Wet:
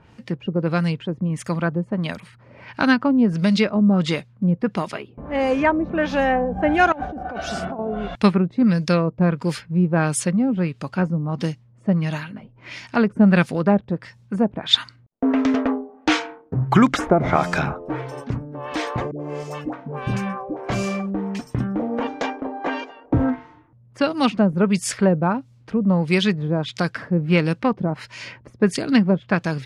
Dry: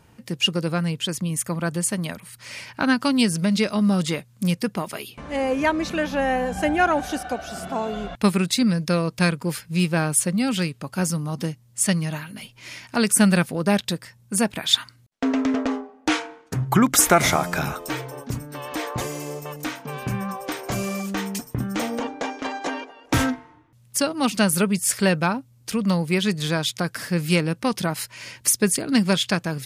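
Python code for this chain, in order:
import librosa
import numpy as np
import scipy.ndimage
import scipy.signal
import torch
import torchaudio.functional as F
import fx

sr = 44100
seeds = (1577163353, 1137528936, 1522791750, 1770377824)

y = fx.over_compress(x, sr, threshold_db=-31.0, ratio=-1.0, at=(6.92, 7.79))
y = fx.dispersion(y, sr, late='highs', ms=91.0, hz=620.0, at=(19.11, 20.57))
y = fx.filter_lfo_lowpass(y, sr, shape='sine', hz=1.5, low_hz=540.0, high_hz=6300.0, q=0.85)
y = F.gain(torch.from_numpy(y), 3.0).numpy()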